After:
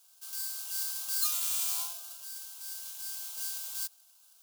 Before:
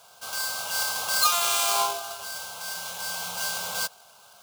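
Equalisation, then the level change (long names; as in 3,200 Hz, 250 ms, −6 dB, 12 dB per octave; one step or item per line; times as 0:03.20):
first-order pre-emphasis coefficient 0.97
−7.0 dB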